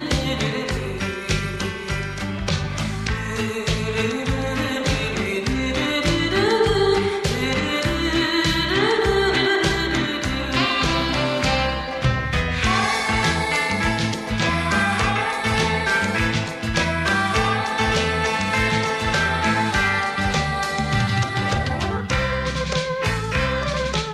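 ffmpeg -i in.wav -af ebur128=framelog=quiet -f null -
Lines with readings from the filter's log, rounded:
Integrated loudness:
  I:         -21.0 LUFS
  Threshold: -30.9 LUFS
Loudness range:
  LRA:         4.3 LU
  Threshold: -40.7 LUFS
  LRA low:   -23.7 LUFS
  LRA high:  -19.5 LUFS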